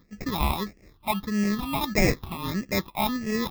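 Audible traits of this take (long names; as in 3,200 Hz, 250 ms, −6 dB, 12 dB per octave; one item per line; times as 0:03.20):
aliases and images of a low sample rate 1,500 Hz, jitter 0%
phaser sweep stages 6, 1.6 Hz, lowest notch 460–1,000 Hz
amplitude modulation by smooth noise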